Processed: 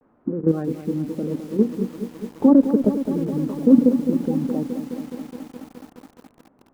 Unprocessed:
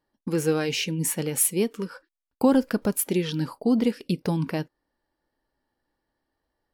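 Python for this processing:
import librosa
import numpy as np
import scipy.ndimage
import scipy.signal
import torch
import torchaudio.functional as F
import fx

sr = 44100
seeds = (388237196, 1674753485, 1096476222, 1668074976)

y = fx.spec_quant(x, sr, step_db=30)
y = fx.low_shelf(y, sr, hz=78.0, db=5.5)
y = fx.dmg_noise_colour(y, sr, seeds[0], colour='white', level_db=-48.0)
y = scipy.signal.sosfilt(scipy.signal.butter(4, 1200.0, 'lowpass', fs=sr, output='sos'), y)
y = fx.hum_notches(y, sr, base_hz=60, count=6)
y = fx.level_steps(y, sr, step_db=11)
y = fx.peak_eq(y, sr, hz=250.0, db=14.0, octaves=1.2)
y = fx.vibrato(y, sr, rate_hz=0.86, depth_cents=84.0)
y = fx.echo_crushed(y, sr, ms=210, feedback_pct=80, bits=7, wet_db=-10.0)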